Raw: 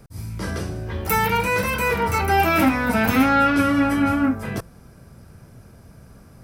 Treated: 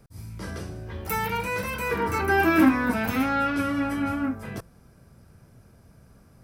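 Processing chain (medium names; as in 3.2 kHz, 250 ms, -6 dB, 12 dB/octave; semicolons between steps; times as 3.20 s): 1.91–2.94 s: small resonant body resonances 320/1100/1600 Hz, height 12 dB, ringing for 25 ms; trim -7.5 dB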